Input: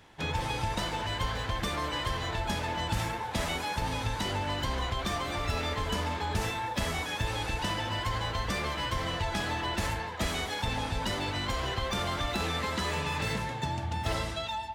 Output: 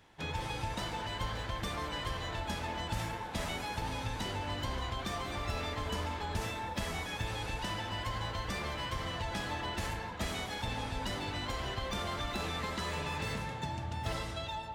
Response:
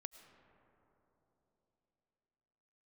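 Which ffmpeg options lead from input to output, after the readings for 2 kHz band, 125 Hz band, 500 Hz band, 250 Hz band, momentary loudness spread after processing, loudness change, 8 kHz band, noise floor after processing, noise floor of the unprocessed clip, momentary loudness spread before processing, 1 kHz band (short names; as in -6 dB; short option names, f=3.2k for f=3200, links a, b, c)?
-5.5 dB, -5.0 dB, -5.0 dB, -5.0 dB, 2 LU, -5.0 dB, -5.5 dB, -41 dBFS, -37 dBFS, 2 LU, -5.5 dB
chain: -filter_complex "[1:a]atrim=start_sample=2205[a];[0:a][a]afir=irnorm=-1:irlink=0"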